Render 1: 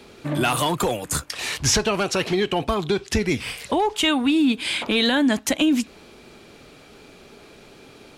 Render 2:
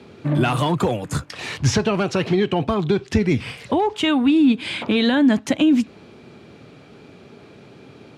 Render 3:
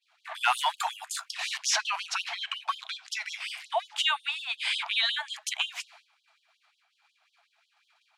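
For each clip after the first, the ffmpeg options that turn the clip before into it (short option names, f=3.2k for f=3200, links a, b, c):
-af "highpass=f=100:w=0.5412,highpass=f=100:w=1.3066,aemphasis=mode=reproduction:type=bsi"
-af "agate=range=-33dB:threshold=-34dB:ratio=3:detection=peak,afftfilt=real='re*gte(b*sr/1024,610*pow(3000/610,0.5+0.5*sin(2*PI*5.5*pts/sr)))':imag='im*gte(b*sr/1024,610*pow(3000/610,0.5+0.5*sin(2*PI*5.5*pts/sr)))':win_size=1024:overlap=0.75"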